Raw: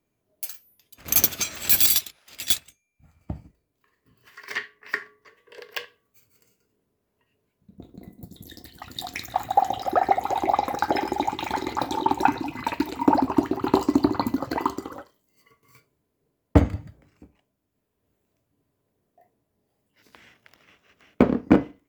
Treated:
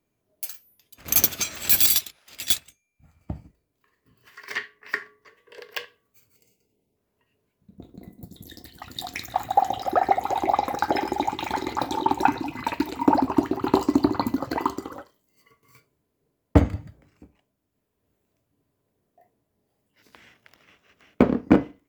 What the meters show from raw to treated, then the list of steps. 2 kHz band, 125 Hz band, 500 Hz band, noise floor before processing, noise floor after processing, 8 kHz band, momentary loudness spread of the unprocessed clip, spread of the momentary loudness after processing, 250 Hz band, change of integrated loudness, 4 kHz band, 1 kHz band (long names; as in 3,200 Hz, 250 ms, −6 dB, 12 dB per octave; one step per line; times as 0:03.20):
0.0 dB, 0.0 dB, 0.0 dB, −77 dBFS, −77 dBFS, 0.0 dB, 17 LU, 17 LU, 0.0 dB, 0.0 dB, 0.0 dB, 0.0 dB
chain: gain on a spectral selection 0:06.36–0:06.96, 960–2,000 Hz −14 dB